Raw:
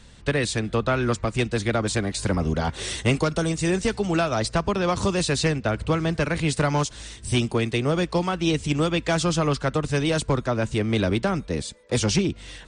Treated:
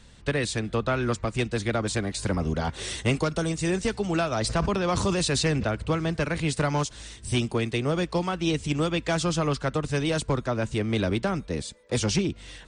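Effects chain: 4.38–5.68 sustainer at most 32 dB/s; gain -3 dB

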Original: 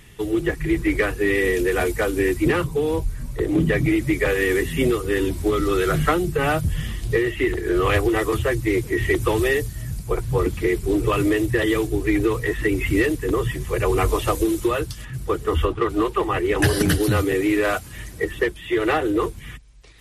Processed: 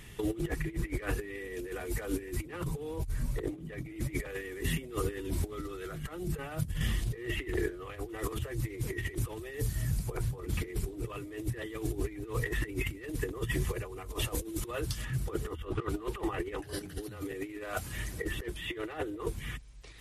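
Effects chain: negative-ratio compressor -26 dBFS, ratio -0.5; gain -8 dB

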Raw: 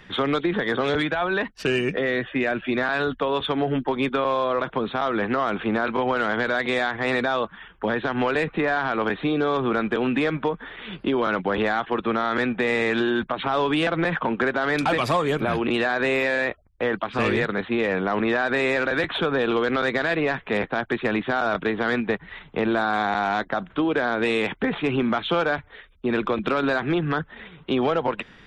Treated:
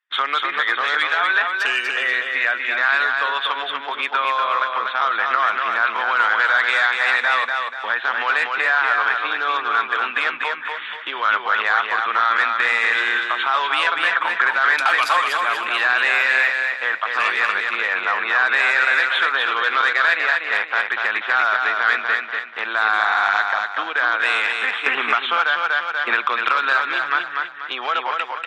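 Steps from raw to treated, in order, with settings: resonant high-pass 1300 Hz, resonance Q 1.6; gate -39 dBFS, range -40 dB; feedback echo 0.242 s, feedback 39%, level -4 dB; 24.86–26.71 three-band squash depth 100%; gain +4.5 dB

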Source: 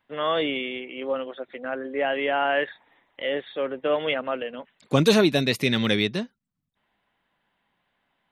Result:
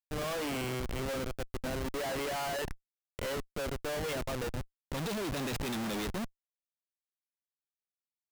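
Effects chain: Schmitt trigger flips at -32 dBFS; gain -8 dB

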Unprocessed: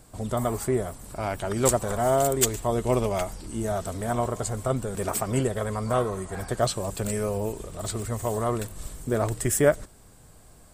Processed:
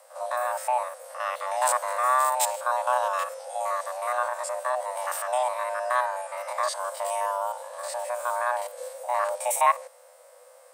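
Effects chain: stepped spectrum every 50 ms; frequency shift +490 Hz

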